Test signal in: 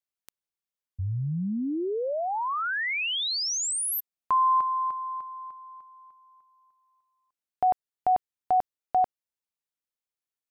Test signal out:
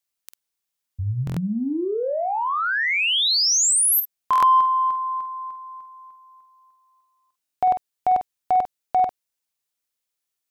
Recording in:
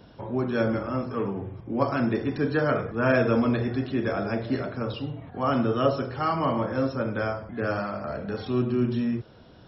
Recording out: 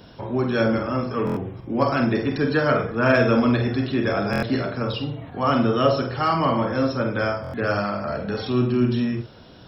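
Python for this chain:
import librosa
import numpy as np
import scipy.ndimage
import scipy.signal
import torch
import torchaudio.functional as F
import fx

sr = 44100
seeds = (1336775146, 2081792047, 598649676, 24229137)

p1 = fx.high_shelf(x, sr, hz=2600.0, db=7.0)
p2 = 10.0 ** (-21.0 / 20.0) * np.tanh(p1 / 10.0 ** (-21.0 / 20.0))
p3 = p1 + (p2 * 10.0 ** (-10.0 / 20.0))
p4 = fx.doubler(p3, sr, ms=49.0, db=-9.0)
p5 = fx.buffer_glitch(p4, sr, at_s=(1.25, 4.31, 7.42), block=1024, repeats=4)
y = p5 * 10.0 ** (1.5 / 20.0)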